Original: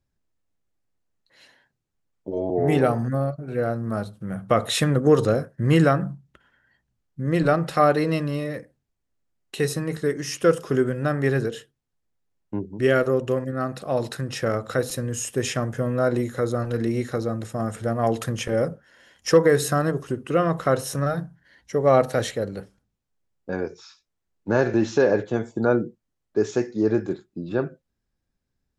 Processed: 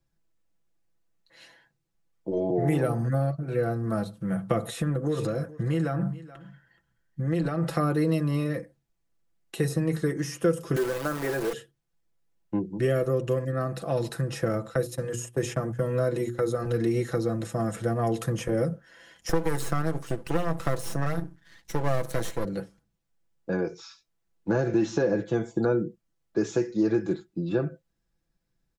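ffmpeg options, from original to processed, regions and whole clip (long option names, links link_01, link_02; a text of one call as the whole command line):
ffmpeg -i in.wav -filter_complex "[0:a]asettb=1/sr,asplit=3[link_01][link_02][link_03];[link_01]atrim=end=4.644[link_04];[link_02]atrim=start=4.64:end=7.63,asetpts=PTS-STARTPTS,afade=type=in:duration=0.004:curve=qsin,afade=type=out:start_time=2.986:duration=0.004:curve=qsin,acompressor=threshold=-24dB:ratio=6:attack=3.2:release=140:knee=1:detection=peak,aecho=1:1:426:0.0944,atrim=end_sample=131859[link_05];[link_03]atrim=start=7.626[link_06];[link_04][link_05]acrossfade=duration=0.004:curve1=hsin:curve2=qsin[link_07];[link_07][link_06]acrossfade=duration=0.004:curve1=qsin:curve2=hsin,asettb=1/sr,asplit=3[link_08][link_09][link_10];[link_08]atrim=end=10.764[link_11];[link_09]atrim=start=10.76:end=11.53,asetpts=PTS-STARTPTS,afade=type=in:duration=0.004:curve=qsin,afade=type=out:start_time=0.766:duration=0.004:curve=qsin,aeval=exprs='val(0)+0.5*0.0473*sgn(val(0))':channel_layout=same,highpass=410,acrusher=bits=6:dc=4:mix=0:aa=0.000001[link_12];[link_10]atrim=start=11.526[link_13];[link_11][link_12]acrossfade=duration=0.004:curve1=hsin:curve2=qsin[link_14];[link_14][link_13]acrossfade=duration=0.004:curve1=qsin:curve2=hsin,asettb=1/sr,asplit=3[link_15][link_16][link_17];[link_15]atrim=end=14.694[link_18];[link_16]atrim=start=14.69:end=16.66,asetpts=PTS-STARTPTS,afade=type=in:duration=0.004:curve=qsin,afade=type=out:start_time=1.966:duration=0.004:curve=qsin,agate=range=-15dB:threshold=-31dB:ratio=16:release=100:detection=peak,bandreject=frequency=60:width_type=h:width=6,bandreject=frequency=120:width_type=h:width=6,bandreject=frequency=180:width_type=h:width=6,bandreject=frequency=240:width_type=h:width=6,bandreject=frequency=300:width_type=h:width=6,bandreject=frequency=360:width_type=h:width=6,bandreject=frequency=420:width_type=h:width=6[link_19];[link_17]atrim=start=16.656[link_20];[link_18][link_19]acrossfade=duration=0.004:curve1=hsin:curve2=qsin[link_21];[link_21][link_20]acrossfade=duration=0.004:curve1=qsin:curve2=hsin,asettb=1/sr,asplit=3[link_22][link_23][link_24];[link_22]atrim=end=19.294[link_25];[link_23]atrim=start=19.29:end=22.45,asetpts=PTS-STARTPTS,afade=type=in:duration=0.004:curve=qsin,afade=type=out:start_time=3.156:duration=0.004:curve=qsin,equalizer=frequency=6100:width=0.33:gain=6.5,aeval=exprs='max(val(0),0)':channel_layout=same[link_26];[link_24]atrim=start=22.446[link_27];[link_25][link_26]acrossfade=duration=0.004:curve1=hsin:curve2=qsin[link_28];[link_28][link_27]acrossfade=duration=0.004:curve1=qsin:curve2=hsin,aecho=1:1:6:0.63,acrossover=split=390|1500|7700[link_29][link_30][link_31][link_32];[link_29]acompressor=threshold=-23dB:ratio=4[link_33];[link_30]acompressor=threshold=-31dB:ratio=4[link_34];[link_31]acompressor=threshold=-44dB:ratio=4[link_35];[link_32]acompressor=threshold=-43dB:ratio=4[link_36];[link_33][link_34][link_35][link_36]amix=inputs=4:normalize=0" out.wav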